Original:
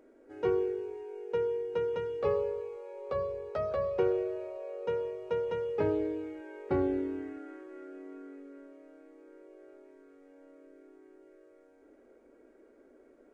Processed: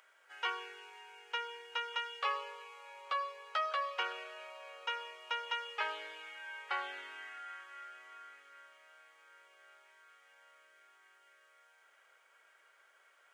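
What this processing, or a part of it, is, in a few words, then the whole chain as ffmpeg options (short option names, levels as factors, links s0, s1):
headphones lying on a table: -af "highpass=f=1100:w=0.5412,highpass=f=1100:w=1.3066,equalizer=f=3100:t=o:w=0.32:g=10,volume=2.82"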